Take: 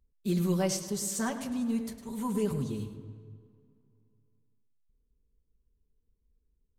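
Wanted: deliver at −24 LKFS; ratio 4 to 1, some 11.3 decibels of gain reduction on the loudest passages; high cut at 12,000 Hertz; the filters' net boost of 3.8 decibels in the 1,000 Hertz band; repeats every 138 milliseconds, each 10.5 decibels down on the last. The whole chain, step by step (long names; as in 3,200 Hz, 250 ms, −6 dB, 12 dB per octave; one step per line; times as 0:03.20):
low-pass filter 12,000 Hz
parametric band 1,000 Hz +4.5 dB
downward compressor 4 to 1, threshold −38 dBFS
repeating echo 138 ms, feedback 30%, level −10.5 dB
level +16.5 dB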